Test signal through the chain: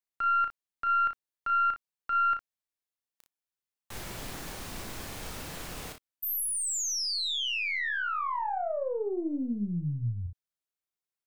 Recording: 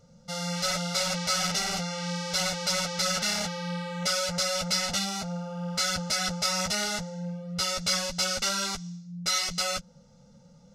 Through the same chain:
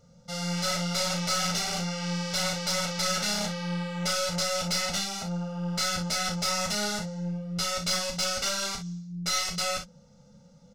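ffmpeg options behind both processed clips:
ffmpeg -i in.wav -af "aeval=exprs='(tanh(8.91*val(0)+0.4)-tanh(0.4))/8.91':channel_layout=same,aecho=1:1:34|58:0.473|0.299" out.wav

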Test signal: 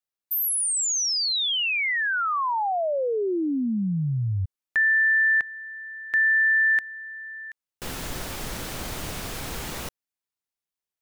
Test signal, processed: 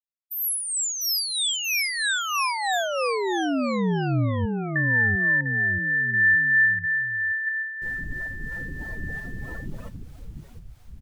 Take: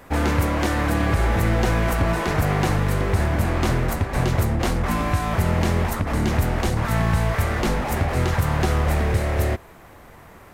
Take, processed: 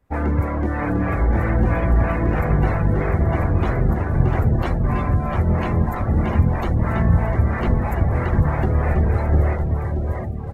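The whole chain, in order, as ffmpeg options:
ffmpeg -i in.wav -filter_complex "[0:a]aecho=1:1:700|1330|1897|2407|2867:0.631|0.398|0.251|0.158|0.1,acrossover=split=430[link_01][link_02];[link_01]aeval=exprs='val(0)*(1-0.5/2+0.5/2*cos(2*PI*3.1*n/s))':channel_layout=same[link_03];[link_02]aeval=exprs='val(0)*(1-0.5/2-0.5/2*cos(2*PI*3.1*n/s))':channel_layout=same[link_04];[link_03][link_04]amix=inputs=2:normalize=0,lowshelf=frequency=220:gain=4,afftdn=noise_reduction=22:noise_floor=-29" out.wav

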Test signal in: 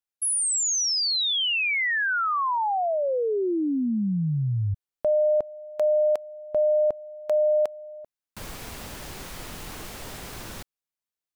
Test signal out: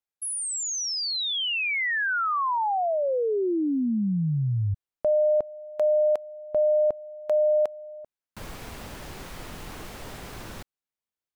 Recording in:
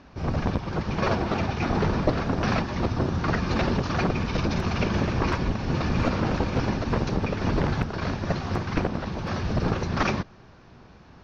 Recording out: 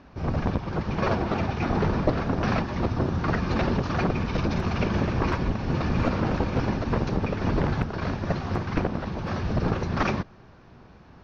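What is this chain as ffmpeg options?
ffmpeg -i in.wav -af "highshelf=frequency=3500:gain=-6.5" out.wav

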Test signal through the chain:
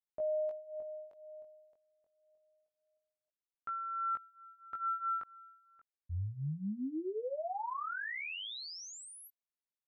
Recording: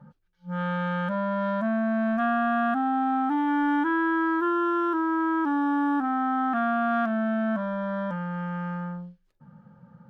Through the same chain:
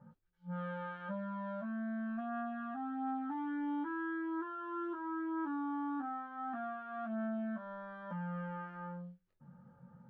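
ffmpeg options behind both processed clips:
ffmpeg -i in.wav -af "aemphasis=mode=reproduction:type=75kf,alimiter=level_in=2.5dB:limit=-24dB:level=0:latency=1:release=455,volume=-2.5dB,flanger=delay=17.5:depth=4.4:speed=0.26,volume=-3.5dB" out.wav

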